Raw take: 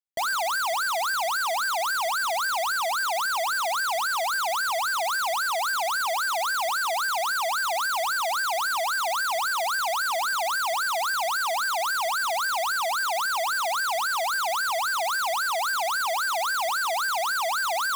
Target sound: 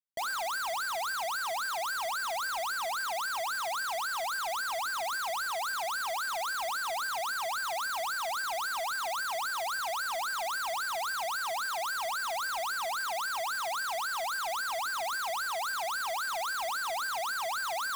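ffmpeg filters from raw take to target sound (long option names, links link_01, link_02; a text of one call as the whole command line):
ffmpeg -i in.wav -af "bandreject=frequency=265.3:width_type=h:width=4,bandreject=frequency=530.6:width_type=h:width=4,bandreject=frequency=795.9:width_type=h:width=4,bandreject=frequency=1061.2:width_type=h:width=4,bandreject=frequency=1326.5:width_type=h:width=4,bandreject=frequency=1591.8:width_type=h:width=4,bandreject=frequency=1857.1:width_type=h:width=4,bandreject=frequency=2122.4:width_type=h:width=4,bandreject=frequency=2387.7:width_type=h:width=4,bandreject=frequency=2653:width_type=h:width=4,acrusher=bits=3:mode=log:mix=0:aa=0.000001,volume=-7.5dB" out.wav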